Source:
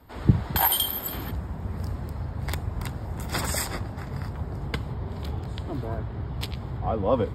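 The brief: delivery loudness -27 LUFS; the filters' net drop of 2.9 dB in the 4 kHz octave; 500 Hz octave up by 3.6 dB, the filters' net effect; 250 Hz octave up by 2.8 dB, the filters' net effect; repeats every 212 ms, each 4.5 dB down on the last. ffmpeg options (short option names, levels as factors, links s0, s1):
-af "equalizer=f=250:t=o:g=3,equalizer=f=500:t=o:g=3.5,equalizer=f=4000:t=o:g=-4,aecho=1:1:212|424|636|848|1060|1272|1484|1696|1908:0.596|0.357|0.214|0.129|0.0772|0.0463|0.0278|0.0167|0.01,volume=0.944"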